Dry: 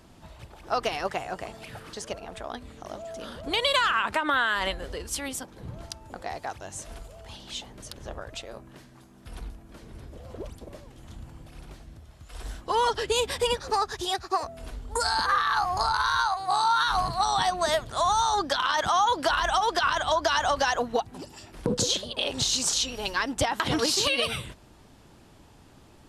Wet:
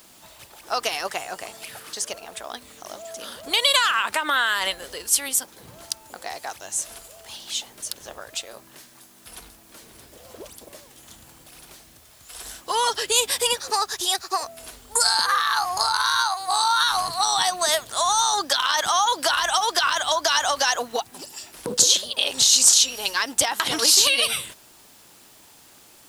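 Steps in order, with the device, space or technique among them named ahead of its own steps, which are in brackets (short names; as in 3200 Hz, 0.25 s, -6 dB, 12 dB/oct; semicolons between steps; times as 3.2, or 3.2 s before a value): turntable without a phono preamp (RIAA curve recording; white noise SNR 31 dB); gain +1.5 dB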